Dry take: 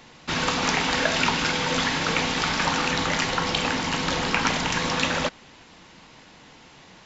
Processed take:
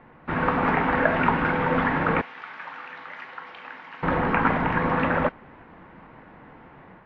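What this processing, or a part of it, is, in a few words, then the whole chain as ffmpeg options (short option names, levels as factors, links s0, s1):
action camera in a waterproof case: -filter_complex "[0:a]asettb=1/sr,asplit=3[s0][s1][s2];[s0]atrim=end=2.214[s3];[s1]atrim=start=2.21:end=4.03,asetpts=PTS-STARTPTS,afade=t=in:d=0.004:c=qsin,afade=t=out:st=1.816:d=0.004:c=qsin,aderivative[s4];[s2]atrim=start=4.026[s5];[s3][s4]acrossfade=d=0.004:c1=hsin:c2=qsin[s6];[s6][s5]acrossfade=d=0.004:c1=qsin:c2=hsin,lowpass=f=1800:w=0.5412,lowpass=f=1800:w=1.3066,dynaudnorm=f=230:g=3:m=1.58" -ar 22050 -c:a aac -b:a 48k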